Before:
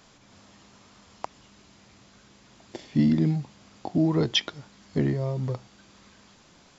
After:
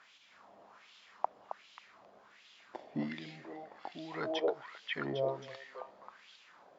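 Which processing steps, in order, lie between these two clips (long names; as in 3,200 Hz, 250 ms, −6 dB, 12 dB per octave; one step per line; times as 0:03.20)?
on a send: echo through a band-pass that steps 268 ms, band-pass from 560 Hz, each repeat 1.4 octaves, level 0 dB
on the sum: auto-filter band-pass sine 1.3 Hz 610–3,200 Hz
level +3.5 dB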